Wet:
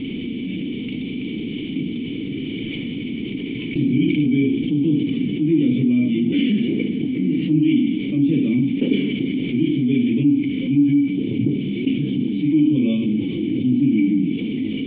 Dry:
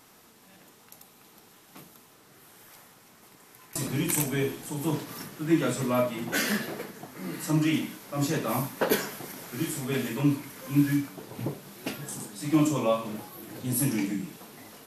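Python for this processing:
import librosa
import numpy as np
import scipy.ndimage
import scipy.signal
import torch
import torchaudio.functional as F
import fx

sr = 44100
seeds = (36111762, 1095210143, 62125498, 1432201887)

y = fx.formant_cascade(x, sr, vowel='i')
y = fx.band_shelf(y, sr, hz=1000.0, db=-15.0, octaves=1.7)
y = fx.env_flatten(y, sr, amount_pct=70)
y = F.gain(torch.from_numpy(y), 7.5).numpy()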